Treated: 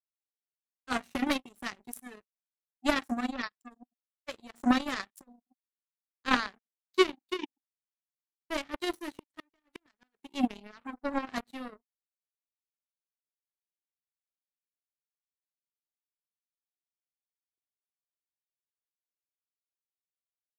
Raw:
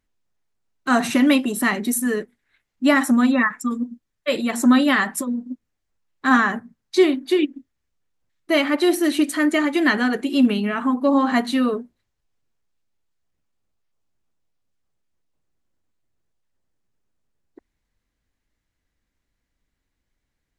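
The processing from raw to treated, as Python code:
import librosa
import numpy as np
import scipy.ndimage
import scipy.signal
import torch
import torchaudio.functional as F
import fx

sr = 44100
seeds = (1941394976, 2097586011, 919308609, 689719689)

y = fx.power_curve(x, sr, exponent=3.0)
y = fx.gate_flip(y, sr, shuts_db=-27.0, range_db=-39, at=(9.09, 10.24))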